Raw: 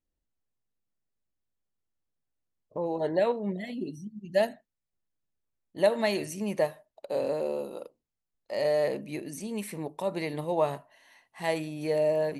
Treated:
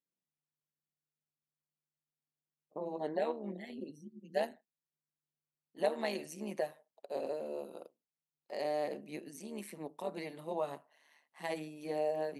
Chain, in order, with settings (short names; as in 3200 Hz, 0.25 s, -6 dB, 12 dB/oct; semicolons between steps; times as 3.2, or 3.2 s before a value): AM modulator 150 Hz, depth 65%; HPF 170 Hz 24 dB/oct; gain -5.5 dB